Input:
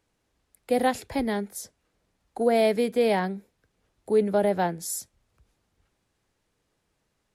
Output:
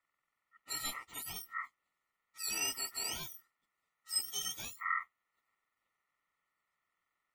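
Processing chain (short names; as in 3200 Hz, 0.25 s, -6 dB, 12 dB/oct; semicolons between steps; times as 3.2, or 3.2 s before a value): spectrum mirrored in octaves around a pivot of 1700 Hz; Butterworth band-stop 3500 Hz, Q 3.2; ring modulator 1600 Hz; gain -7.5 dB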